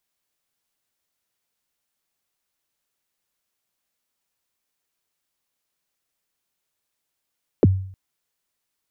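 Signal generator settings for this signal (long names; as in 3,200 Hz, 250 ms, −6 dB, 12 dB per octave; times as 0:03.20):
synth kick length 0.31 s, from 540 Hz, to 95 Hz, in 28 ms, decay 0.57 s, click off, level −8 dB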